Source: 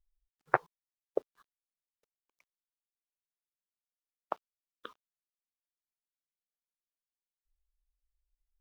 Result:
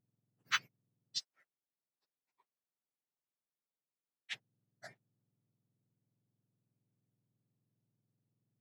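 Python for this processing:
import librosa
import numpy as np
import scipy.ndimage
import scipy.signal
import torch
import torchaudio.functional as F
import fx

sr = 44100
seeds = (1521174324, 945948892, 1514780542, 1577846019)

y = fx.octave_mirror(x, sr, pivot_hz=1500.0)
y = fx.bessel_highpass(y, sr, hz=1100.0, order=2, at=(1.18, 4.33))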